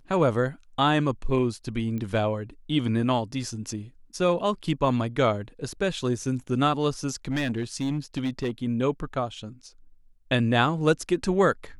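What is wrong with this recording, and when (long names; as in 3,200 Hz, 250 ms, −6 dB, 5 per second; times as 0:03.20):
0:01.98: click −22 dBFS
0:07.31–0:08.50: clipping −22.5 dBFS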